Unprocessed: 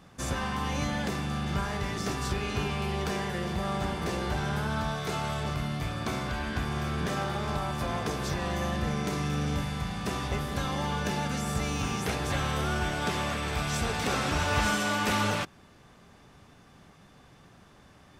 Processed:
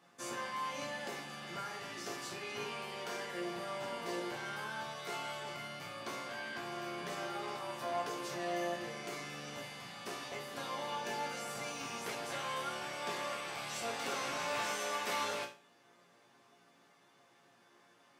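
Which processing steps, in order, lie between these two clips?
high-pass 320 Hz 12 dB/octave; chord resonator A#2 minor, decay 0.35 s; trim +7.5 dB

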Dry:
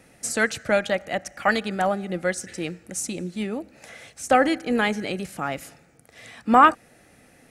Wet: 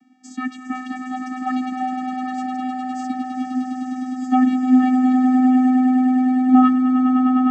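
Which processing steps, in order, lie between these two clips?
vocoder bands 16, square 255 Hz; echo with a slow build-up 102 ms, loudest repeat 8, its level -10 dB

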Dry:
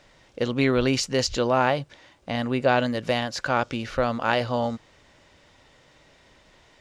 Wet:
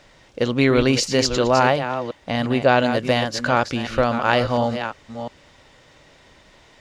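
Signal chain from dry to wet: chunks repeated in reverse 352 ms, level -9 dB; trim +4.5 dB

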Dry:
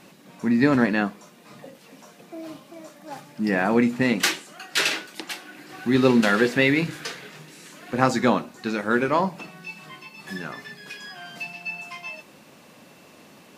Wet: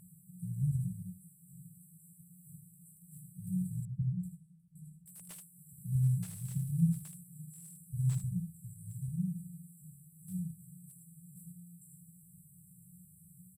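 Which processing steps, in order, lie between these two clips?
on a send: early reflections 11 ms -13.5 dB, 55 ms -13.5 dB, 78 ms -7.5 dB; on the sum: FFT band-reject 190–7600 Hz; 3.85–5.06 s: distance through air 490 m; slew-rate limiter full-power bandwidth 38 Hz

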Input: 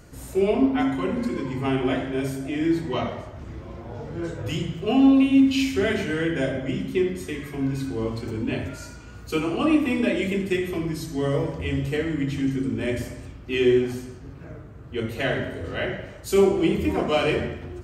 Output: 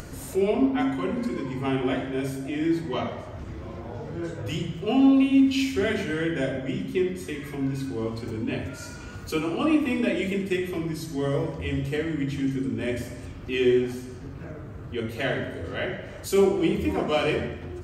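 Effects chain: hum notches 60/120 Hz; upward compressor, threshold -28 dBFS; trim -2 dB

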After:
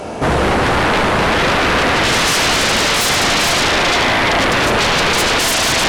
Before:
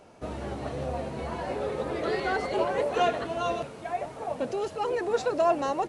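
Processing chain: spring tank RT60 3.7 s, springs 36 ms, chirp 30 ms, DRR -1 dB; Chebyshev shaper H 5 -10 dB, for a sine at -9.5 dBFS; sine folder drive 16 dB, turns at -9.5 dBFS; trim -1.5 dB

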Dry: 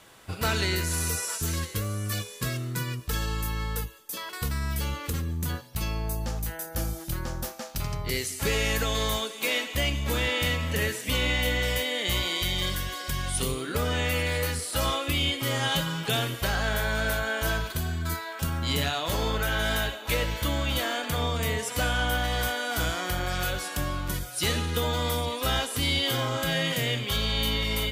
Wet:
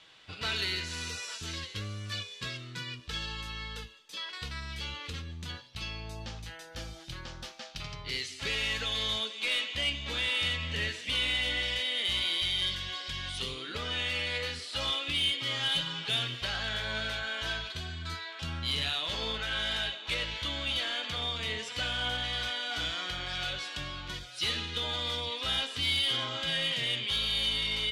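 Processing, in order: low-pass 5.6 kHz 12 dB/octave; peaking EQ 3.4 kHz +14.5 dB 1.8 oct; saturation -11 dBFS, distortion -18 dB; flange 0.13 Hz, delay 6.2 ms, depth 7.4 ms, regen +68%; trim -7 dB

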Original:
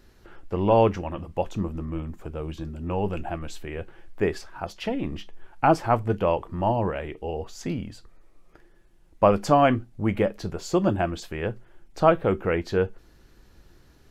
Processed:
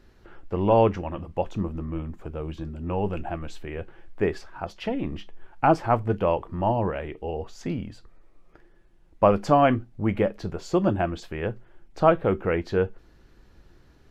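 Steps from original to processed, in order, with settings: treble shelf 5.9 kHz -11 dB

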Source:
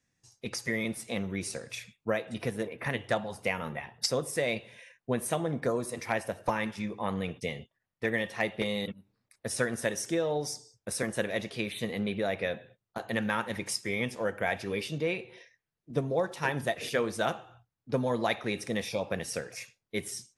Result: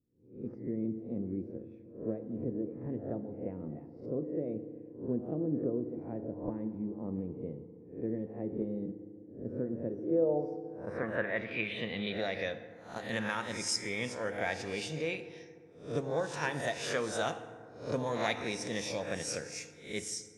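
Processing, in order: reverse spectral sustain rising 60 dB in 0.45 s; low-pass sweep 330 Hz -> 7.2 kHz, 9.84–12.64 s; FDN reverb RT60 2.3 s, low-frequency decay 1.25×, high-frequency decay 0.4×, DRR 11 dB; trim -6 dB

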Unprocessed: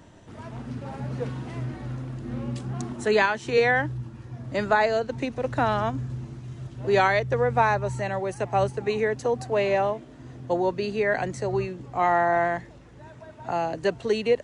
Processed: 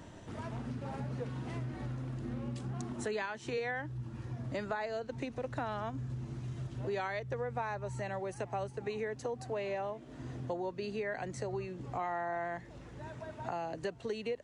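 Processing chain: compression 4:1, threshold -37 dBFS, peak gain reduction 17.5 dB

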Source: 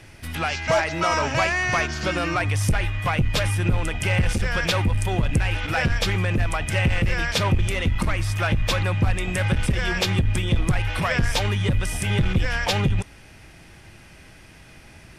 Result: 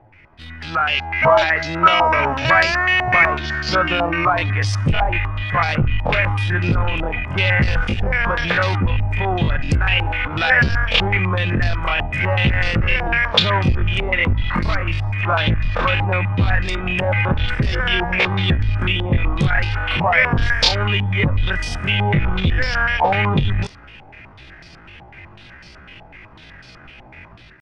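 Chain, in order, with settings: level rider gain up to 9 dB; tempo 0.55×; step-sequenced low-pass 8 Hz 830–4700 Hz; trim -5.5 dB

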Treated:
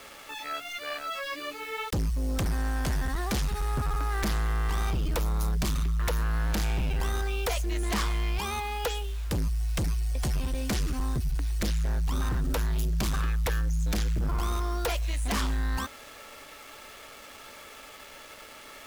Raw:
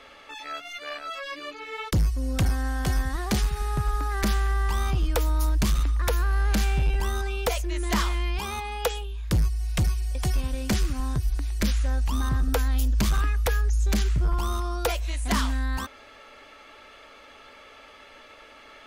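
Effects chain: word length cut 8-bit, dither none; sine folder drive 4 dB, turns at -17 dBFS; trim -7 dB

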